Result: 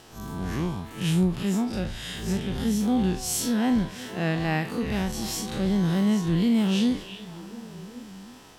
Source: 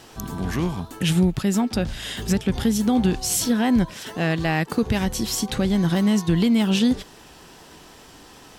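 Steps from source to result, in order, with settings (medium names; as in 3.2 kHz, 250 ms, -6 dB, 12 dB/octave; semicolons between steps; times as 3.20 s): spectral blur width 91 ms; repeats whose band climbs or falls 361 ms, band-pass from 2.6 kHz, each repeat -1.4 oct, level -8 dB; trim -2.5 dB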